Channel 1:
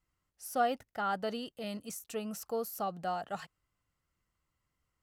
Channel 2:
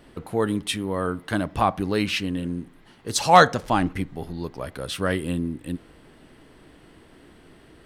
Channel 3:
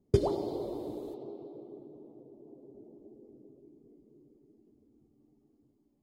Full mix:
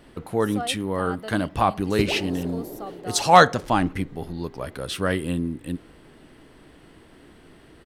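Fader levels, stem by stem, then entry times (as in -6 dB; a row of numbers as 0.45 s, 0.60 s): -2.5 dB, +0.5 dB, +1.0 dB; 0.00 s, 0.00 s, 1.85 s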